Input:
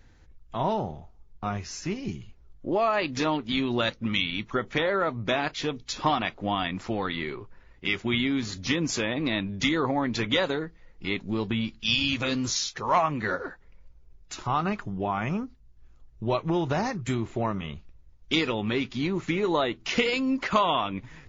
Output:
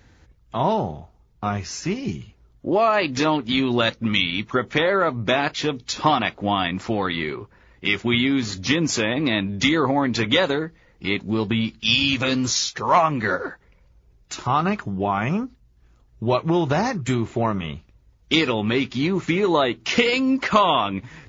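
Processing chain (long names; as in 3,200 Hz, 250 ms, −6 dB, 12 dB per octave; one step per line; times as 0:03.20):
high-pass filter 55 Hz
level +6 dB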